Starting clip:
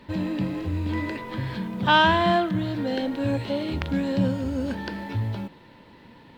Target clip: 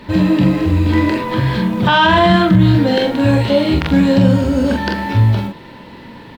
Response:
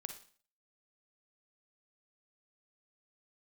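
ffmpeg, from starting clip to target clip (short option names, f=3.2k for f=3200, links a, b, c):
-filter_complex "[0:a]aecho=1:1:28|44:0.335|0.596,asplit=3[a][b][c];[a]afade=t=out:st=2.28:d=0.02[d];[b]asubboost=boost=2.5:cutoff=250,afade=t=in:st=2.28:d=0.02,afade=t=out:st=2.78:d=0.02[e];[c]afade=t=in:st=2.78:d=0.02[f];[d][e][f]amix=inputs=3:normalize=0,alimiter=level_in=13dB:limit=-1dB:release=50:level=0:latency=1,volume=-1dB"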